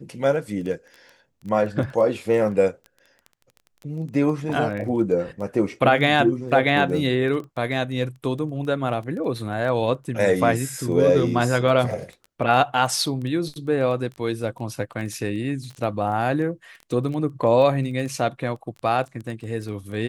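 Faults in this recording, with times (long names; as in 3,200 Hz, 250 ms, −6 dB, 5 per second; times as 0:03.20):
surface crackle 11 per second −30 dBFS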